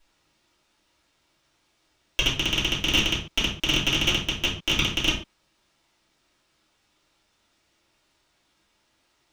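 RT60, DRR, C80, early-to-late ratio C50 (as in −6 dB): non-exponential decay, −9.5 dB, 12.0 dB, 7.0 dB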